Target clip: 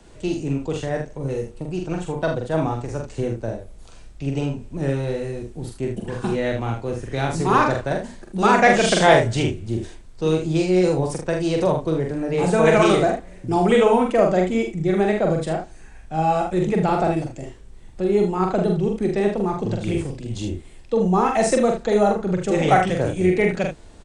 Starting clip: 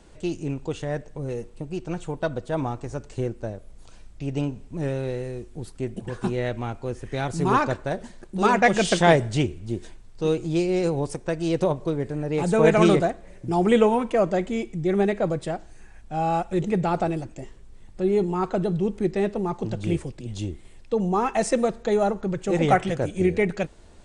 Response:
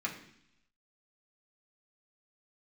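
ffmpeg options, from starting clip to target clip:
-filter_complex "[0:a]acrossover=split=100|410|3900[a][b][c][d];[b]alimiter=limit=-21dB:level=0:latency=1[e];[a][e][c][d]amix=inputs=4:normalize=0,aecho=1:1:44|77:0.668|0.376,volume=2.5dB"

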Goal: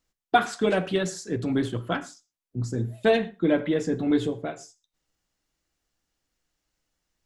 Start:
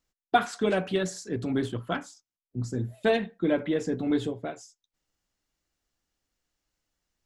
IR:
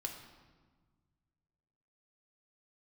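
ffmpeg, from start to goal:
-filter_complex "[0:a]asplit=2[a][b];[1:a]atrim=start_sample=2205,atrim=end_sample=3087,asetrate=23373,aresample=44100[c];[b][c]afir=irnorm=-1:irlink=0,volume=-10dB[d];[a][d]amix=inputs=2:normalize=0"

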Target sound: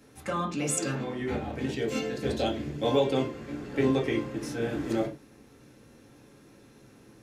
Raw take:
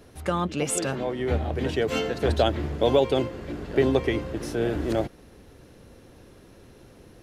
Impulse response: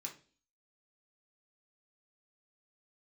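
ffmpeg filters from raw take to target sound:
-filter_complex "[0:a]asettb=1/sr,asplit=3[a][b][c];[a]atrim=end=1.624[d];[b]atrim=start=1.62:end=2.83,asetpts=PTS-STARTPTS,afade=t=in:d=0.004:c=qsin,afade=t=out:st=1.206:d=0.004:c=qsin,equalizer=f=1.2k:t=o:w=1.1:g=-8[e];[c]atrim=start=2.826[f];[d][e]acrossfade=d=0.004:c1=hsin:c2=qsin[g];[g][f]acrossfade=d=0.004:c1=qsin:c2=hsin[h];[1:a]atrim=start_sample=2205,atrim=end_sample=6174[i];[h][i]afir=irnorm=-1:irlink=0"

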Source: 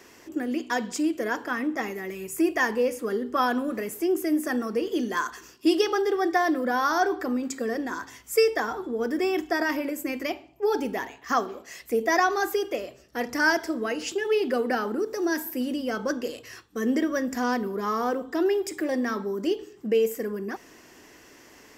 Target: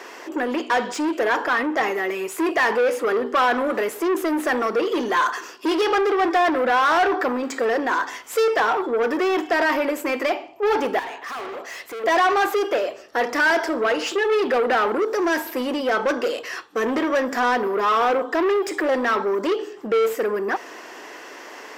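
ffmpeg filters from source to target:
-filter_complex "[0:a]equalizer=f=2.2k:t=o:w=1.4:g=-5.5,asplit=2[a][b];[b]highpass=f=720:p=1,volume=26dB,asoftclip=type=tanh:threshold=-10.5dB[c];[a][c]amix=inputs=2:normalize=0,lowpass=f=6.7k:p=1,volume=-6dB,asettb=1/sr,asplit=3[d][e][f];[d]atrim=end=10.994[g];[e]atrim=start=10.99:end=12.04,asetpts=PTS-STARTPTS,afade=t=in:d=0.004:c=qsin,afade=t=out:st=1.046:d=0.004:c=qsin,asoftclip=type=hard:threshold=-29dB[h];[f]atrim=start=12.036[i];[g][h]acrossfade=d=0.004:c1=hsin:c2=qsin[j];[j][i]acrossfade=d=0.004:c1=qsin:c2=hsin,bass=f=250:g=-14,treble=f=4k:g=-12"

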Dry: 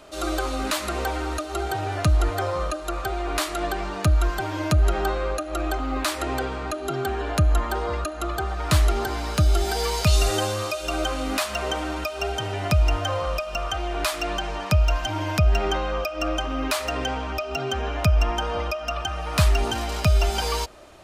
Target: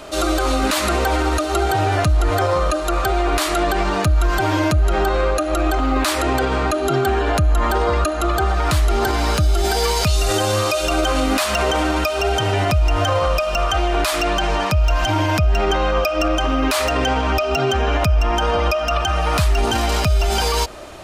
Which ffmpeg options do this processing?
-af "alimiter=level_in=20dB:limit=-1dB:release=50:level=0:latency=1,volume=-8.5dB"

